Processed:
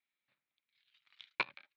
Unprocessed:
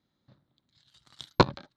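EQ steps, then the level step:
resonant band-pass 2,400 Hz, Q 6.7
high-frequency loss of the air 110 metres
+6.5 dB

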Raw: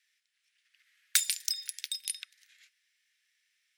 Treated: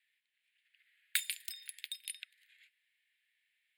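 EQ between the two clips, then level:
high-pass filter 1,100 Hz
high-shelf EQ 2,900 Hz −6.5 dB
phaser with its sweep stopped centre 2,500 Hz, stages 4
+1.5 dB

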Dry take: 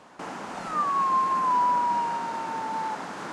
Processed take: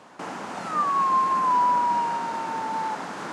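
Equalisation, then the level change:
high-pass filter 72 Hz
+2.0 dB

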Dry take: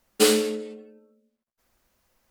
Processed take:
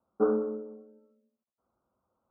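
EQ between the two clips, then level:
high-pass filter 94 Hz 12 dB per octave
Butterworth low-pass 1,400 Hz 96 dB per octave
−5.5 dB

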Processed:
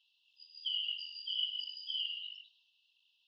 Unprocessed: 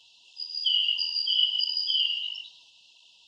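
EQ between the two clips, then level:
dynamic equaliser 3,800 Hz, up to +6 dB, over −39 dBFS, Q 1.6
four-pole ladder band-pass 2,500 Hz, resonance 35%
high-frequency loss of the air 89 metres
−3.5 dB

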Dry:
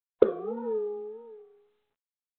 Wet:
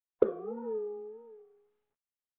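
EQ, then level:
high-frequency loss of the air 410 metres
−4.0 dB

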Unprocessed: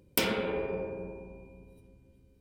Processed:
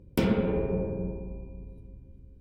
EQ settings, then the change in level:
dynamic equaliser 160 Hz, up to +5 dB, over −49 dBFS, Q 1
spectral tilt −3.5 dB per octave
−1.5 dB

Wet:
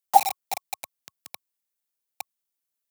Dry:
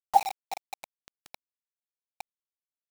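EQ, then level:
high-pass filter 98 Hz 24 dB per octave
high-shelf EQ 7,200 Hz +11 dB
notch filter 1,100 Hz, Q 28
+4.5 dB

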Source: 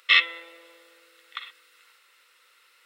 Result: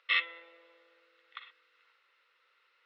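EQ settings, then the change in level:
Butterworth high-pass 340 Hz
high-frequency loss of the air 240 metres
−7.0 dB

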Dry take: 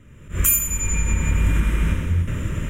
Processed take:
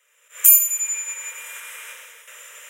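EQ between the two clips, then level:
Chebyshev high-pass filter 440 Hz, order 8
spectral tilt +4.5 dB per octave
−8.5 dB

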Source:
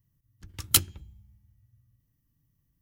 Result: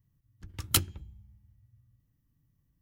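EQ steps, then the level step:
high-shelf EQ 2,700 Hz −7 dB
+1.0 dB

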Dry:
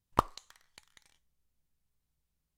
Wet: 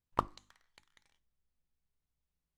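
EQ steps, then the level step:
high-shelf EQ 5,300 Hz −10 dB
mains-hum notches 50/100/150/200/250 Hz
mains-hum notches 50/100/150/200/250/300/350 Hz
−4.0 dB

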